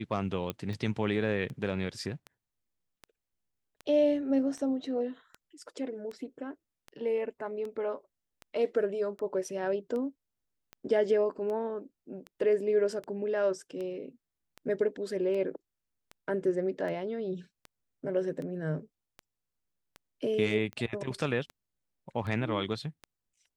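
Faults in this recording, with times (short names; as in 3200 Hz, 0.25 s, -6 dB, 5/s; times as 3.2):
tick 78 rpm -28 dBFS
0.5 pop -19 dBFS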